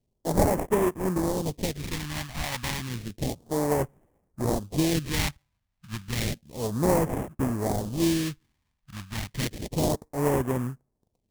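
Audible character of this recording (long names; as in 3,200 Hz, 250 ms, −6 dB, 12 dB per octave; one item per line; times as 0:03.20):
aliases and images of a low sample rate 1,400 Hz, jitter 20%
phaser sweep stages 2, 0.31 Hz, lowest notch 390–3,900 Hz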